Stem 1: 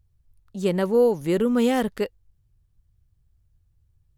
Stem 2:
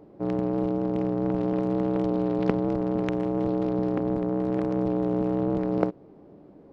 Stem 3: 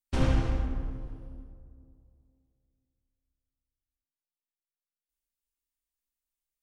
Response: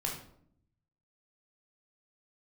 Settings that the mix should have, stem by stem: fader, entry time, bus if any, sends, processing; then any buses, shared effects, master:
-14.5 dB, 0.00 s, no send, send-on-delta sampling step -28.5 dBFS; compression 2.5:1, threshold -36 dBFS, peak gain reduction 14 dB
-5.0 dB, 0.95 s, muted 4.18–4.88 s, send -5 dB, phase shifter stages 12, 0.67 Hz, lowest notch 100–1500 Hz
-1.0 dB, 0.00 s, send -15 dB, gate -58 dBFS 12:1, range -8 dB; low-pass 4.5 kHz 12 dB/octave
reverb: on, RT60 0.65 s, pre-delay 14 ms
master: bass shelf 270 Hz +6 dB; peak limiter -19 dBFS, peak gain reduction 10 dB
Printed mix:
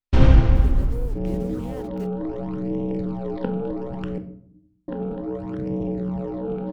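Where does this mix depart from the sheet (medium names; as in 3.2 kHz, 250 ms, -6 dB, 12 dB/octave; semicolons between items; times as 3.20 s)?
stem 1 -14.5 dB -> -7.0 dB; stem 3 -1.0 dB -> +5.5 dB; master: missing peak limiter -19 dBFS, peak gain reduction 10 dB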